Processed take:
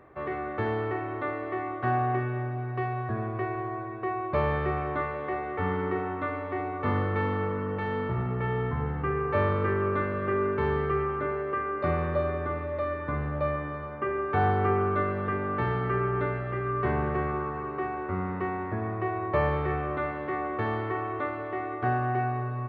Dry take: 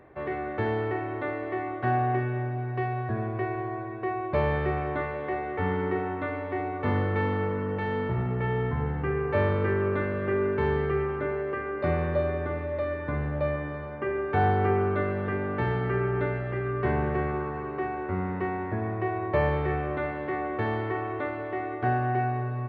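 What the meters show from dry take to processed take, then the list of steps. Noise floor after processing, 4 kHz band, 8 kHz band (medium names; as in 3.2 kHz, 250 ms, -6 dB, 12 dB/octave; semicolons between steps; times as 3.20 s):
-35 dBFS, -1.5 dB, no reading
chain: peaking EQ 1.2 kHz +8.5 dB 0.25 oct; trim -1.5 dB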